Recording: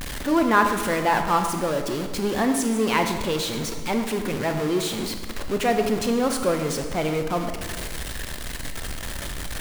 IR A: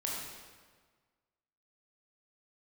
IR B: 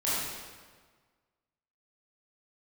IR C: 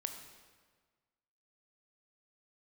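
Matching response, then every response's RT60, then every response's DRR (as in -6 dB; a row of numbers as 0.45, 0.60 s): C; 1.5, 1.5, 1.5 s; -4.0, -10.5, 5.0 dB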